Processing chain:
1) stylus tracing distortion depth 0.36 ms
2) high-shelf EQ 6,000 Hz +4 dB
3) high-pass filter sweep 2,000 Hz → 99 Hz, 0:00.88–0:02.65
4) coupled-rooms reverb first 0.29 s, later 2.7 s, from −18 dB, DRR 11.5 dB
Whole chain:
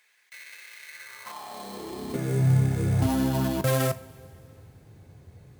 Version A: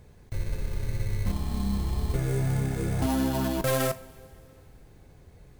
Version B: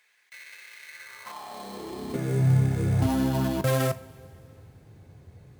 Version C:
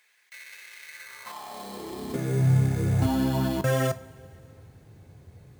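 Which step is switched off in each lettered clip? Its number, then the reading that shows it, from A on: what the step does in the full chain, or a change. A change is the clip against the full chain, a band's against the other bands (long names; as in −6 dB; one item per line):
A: 3, change in momentary loudness spread −11 LU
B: 2, 8 kHz band −2.5 dB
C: 1, 8 kHz band −2.5 dB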